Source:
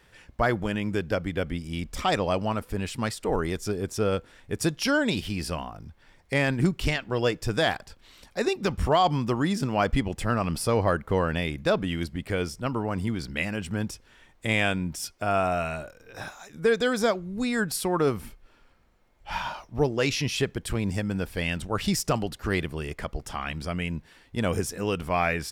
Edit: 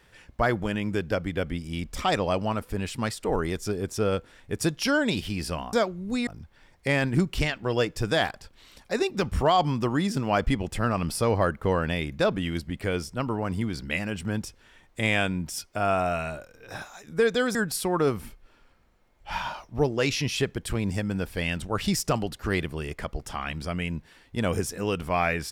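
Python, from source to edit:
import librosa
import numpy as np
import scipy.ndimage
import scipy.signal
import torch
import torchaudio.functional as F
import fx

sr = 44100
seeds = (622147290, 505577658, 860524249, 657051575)

y = fx.edit(x, sr, fx.move(start_s=17.01, length_s=0.54, to_s=5.73), tone=tone)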